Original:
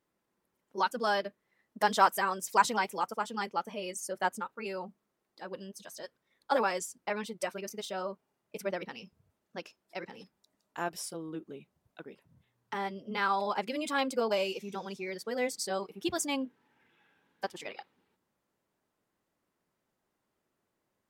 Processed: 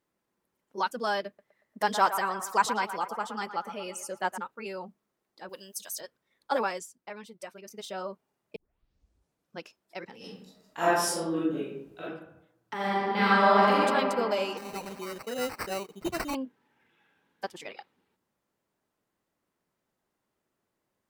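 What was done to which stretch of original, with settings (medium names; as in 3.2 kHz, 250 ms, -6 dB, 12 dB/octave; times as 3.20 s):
1.27–4.38 s: band-passed feedback delay 116 ms, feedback 59%, band-pass 1.1 kHz, level -9 dB
5.49–6.01 s: RIAA curve recording
6.65–7.90 s: dip -8 dB, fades 0.27 s
8.56 s: tape start 1.07 s
10.18–12.03 s: reverb throw, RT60 0.82 s, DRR -11.5 dB
12.74–13.75 s: reverb throw, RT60 2.8 s, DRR -9 dB
14.57–16.35 s: sample-rate reducer 3.4 kHz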